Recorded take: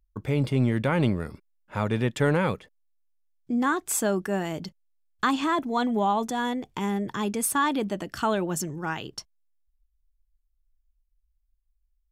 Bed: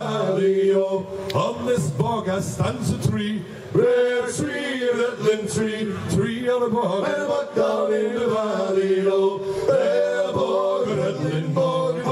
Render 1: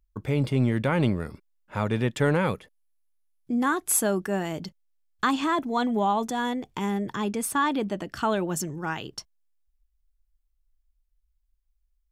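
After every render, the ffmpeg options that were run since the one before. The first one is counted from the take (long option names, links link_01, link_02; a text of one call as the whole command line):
ffmpeg -i in.wav -filter_complex "[0:a]asettb=1/sr,asplit=3[link_01][link_02][link_03];[link_01]atrim=end=2.454[link_04];[link_02]atrim=start=2.45:end=4.18,asetpts=PTS-STARTPTS,afade=type=in:duration=0.004:curve=qsin,afade=type=out:start_time=1.726:duration=0.004:curve=qsin,equalizer=frequency=11000:width=4.9:gain=12.5[link_05];[link_03]atrim=start=4.176[link_06];[link_04][link_05]acrossfade=duration=0.004:curve1=hsin:curve2=qsin[link_07];[link_07][link_06]acrossfade=duration=0.004:curve1=qsin:curve2=hsin,asettb=1/sr,asplit=3[link_08][link_09][link_10];[link_08]atrim=end=7.164[link_11];[link_09]atrim=start=7.16:end=8.32,asetpts=PTS-STARTPTS,afade=type=in:duration=0.004:curve=qsin,afade=type=out:start_time=1.156:duration=0.004:curve=qsin,highshelf=frequency=6200:gain=-6[link_12];[link_10]atrim=start=8.316[link_13];[link_11][link_12]acrossfade=duration=0.004:curve1=hsin:curve2=qsin[link_14];[link_14][link_13]acrossfade=duration=0.004:curve1=qsin:curve2=hsin" out.wav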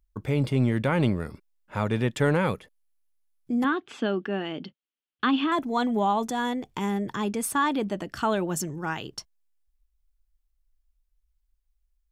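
ffmpeg -i in.wav -filter_complex "[0:a]asettb=1/sr,asplit=3[link_01][link_02][link_03];[link_01]atrim=end=3.644[link_04];[link_02]atrim=start=3.64:end=5.52,asetpts=PTS-STARTPTS,afade=type=in:duration=0.004:curve=qsin,afade=type=out:start_time=1.876:duration=0.004:curve=qsin,highpass=160,equalizer=frequency=170:width_type=q:width=4:gain=-5,equalizer=frequency=250:width_type=q:width=4:gain=6,equalizer=frequency=640:width_type=q:width=4:gain=-5,equalizer=frequency=950:width_type=q:width=4:gain=-6,equalizer=frequency=2000:width_type=q:width=4:gain=-3,equalizer=frequency=3000:width_type=q:width=4:gain=7,lowpass=frequency=3700:width=0.5412,lowpass=frequency=3700:width=1.3066[link_05];[link_03]atrim=start=5.516[link_06];[link_04][link_05]acrossfade=duration=0.004:curve1=hsin:curve2=qsin[link_07];[link_07][link_06]acrossfade=duration=0.004:curve1=qsin:curve2=hsin" out.wav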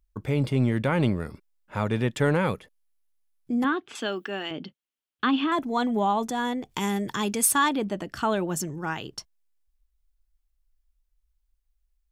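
ffmpeg -i in.wav -filter_complex "[0:a]asettb=1/sr,asplit=3[link_01][link_02][link_03];[link_01]atrim=end=3.954[link_04];[link_02]atrim=start=3.95:end=4.51,asetpts=PTS-STARTPTS,afade=type=in:duration=0.004:curve=qsin,afade=type=out:start_time=0.556:duration=0.004:curve=qsin,aemphasis=mode=production:type=riaa[link_05];[link_03]atrim=start=4.506[link_06];[link_04][link_05]acrossfade=duration=0.004:curve1=hsin:curve2=qsin[link_07];[link_07][link_06]acrossfade=duration=0.004:curve1=qsin:curve2=hsin,asplit=3[link_08][link_09][link_10];[link_08]afade=type=out:start_time=6.7:duration=0.02[link_11];[link_09]highshelf=frequency=2500:gain=10.5,afade=type=in:start_time=6.7:duration=0.02,afade=type=out:start_time=7.68:duration=0.02[link_12];[link_10]afade=type=in:start_time=7.68:duration=0.02[link_13];[link_11][link_12][link_13]amix=inputs=3:normalize=0" out.wav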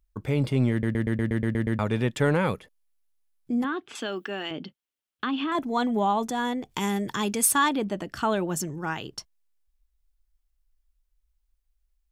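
ffmpeg -i in.wav -filter_complex "[0:a]asettb=1/sr,asplit=3[link_01][link_02][link_03];[link_01]atrim=end=3.614[link_04];[link_02]atrim=start=3.61:end=5.55,asetpts=PTS-STARTPTS,afade=type=in:duration=0.004:curve=qsin,afade=type=out:start_time=1.936:duration=0.004:curve=qsin,acompressor=threshold=-26dB:ratio=2.5:attack=3.2:release=140:knee=1:detection=peak[link_05];[link_03]atrim=start=5.546[link_06];[link_04][link_05]acrossfade=duration=0.004:curve1=hsin:curve2=qsin[link_07];[link_07][link_06]acrossfade=duration=0.004:curve1=qsin:curve2=hsin,asplit=10[link_08][link_09][link_10][link_11][link_12][link_13][link_14][link_15][link_16][link_17];[link_08]atrim=end=0.832[link_18];[link_09]atrim=start=0.708:end=0.832[link_19];[link_10]atrim=start=0.708:end=0.832[link_20];[link_11]atrim=start=0.708:end=0.832[link_21];[link_12]atrim=start=0.708:end=0.832[link_22];[link_13]atrim=start=0.708:end=0.832[link_23];[link_14]atrim=start=0.708:end=0.832[link_24];[link_15]atrim=start=0.708:end=0.832[link_25];[link_16]atrim=start=0.708:end=0.832[link_26];[link_17]atrim=start=1.788[link_27];[link_18][link_19]acrossfade=duration=0.004:curve1=hsin:curve2=hsin[link_28];[link_28][link_20]acrossfade=duration=0.004:curve1=hsin:curve2=hsin[link_29];[link_29][link_21]acrossfade=duration=0.004:curve1=hsin:curve2=hsin[link_30];[link_30][link_22]acrossfade=duration=0.004:curve1=hsin:curve2=hsin[link_31];[link_31][link_23]acrossfade=duration=0.004:curve1=hsin:curve2=hsin[link_32];[link_32][link_24]acrossfade=duration=0.004:curve1=hsin:curve2=hsin[link_33];[link_33][link_25]acrossfade=duration=0.004:curve1=hsin:curve2=hsin[link_34];[link_34][link_26]acrossfade=duration=0.004:curve1=hsin:curve2=hsin[link_35];[link_35][link_27]acrossfade=duration=0.004:curve1=hsin:curve2=hsin" out.wav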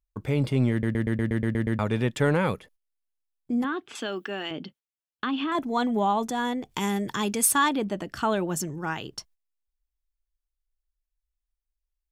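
ffmpeg -i in.wav -af "agate=range=-12dB:threshold=-53dB:ratio=16:detection=peak" out.wav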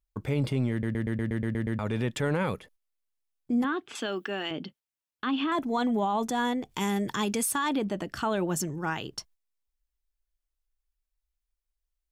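ffmpeg -i in.wav -af "alimiter=limit=-19.5dB:level=0:latency=1:release=43" out.wav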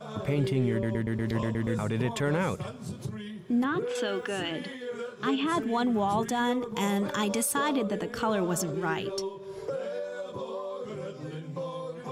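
ffmpeg -i in.wav -i bed.wav -filter_complex "[1:a]volume=-15dB[link_01];[0:a][link_01]amix=inputs=2:normalize=0" out.wav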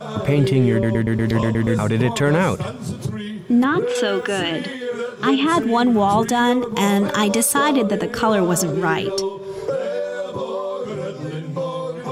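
ffmpeg -i in.wav -af "volume=10.5dB" out.wav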